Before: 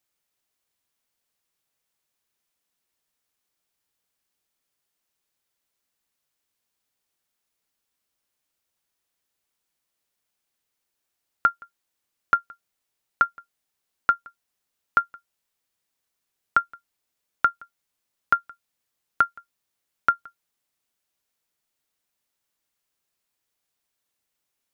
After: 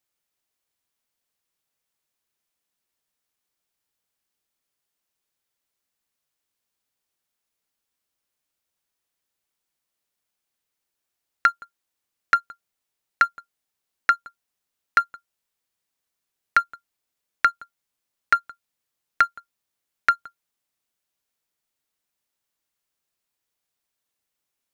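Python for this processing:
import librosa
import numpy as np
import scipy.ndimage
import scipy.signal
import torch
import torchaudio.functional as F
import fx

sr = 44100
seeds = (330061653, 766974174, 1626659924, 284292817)

y = fx.leveller(x, sr, passes=1)
y = fx.doppler_dist(y, sr, depth_ms=0.46)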